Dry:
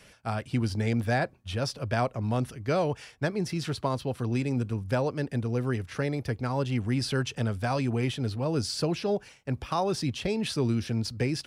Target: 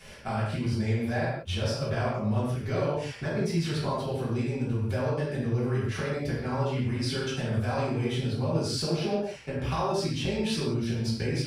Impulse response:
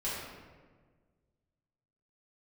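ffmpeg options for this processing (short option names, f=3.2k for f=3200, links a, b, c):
-filter_complex "[0:a]acompressor=threshold=-35dB:ratio=6[a];[1:a]atrim=start_sample=2205,afade=t=out:st=0.24:d=0.01,atrim=end_sample=11025[b];[a][b]afir=irnorm=-1:irlink=0,volume=4.5dB"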